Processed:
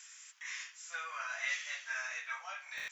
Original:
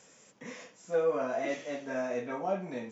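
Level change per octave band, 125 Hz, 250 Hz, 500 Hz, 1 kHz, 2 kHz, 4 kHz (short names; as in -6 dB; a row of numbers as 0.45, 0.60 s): under -30 dB, under -40 dB, -28.0 dB, -7.0 dB, +5.5 dB, +6.5 dB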